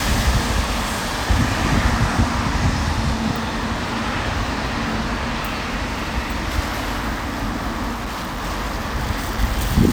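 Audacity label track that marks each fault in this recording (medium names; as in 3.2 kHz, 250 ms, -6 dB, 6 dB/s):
7.920000	8.440000	clipped -23 dBFS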